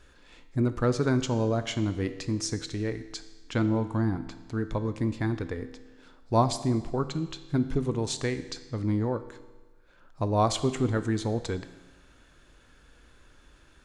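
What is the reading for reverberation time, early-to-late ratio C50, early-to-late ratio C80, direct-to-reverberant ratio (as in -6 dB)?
1.3 s, 12.5 dB, 14.0 dB, 10.0 dB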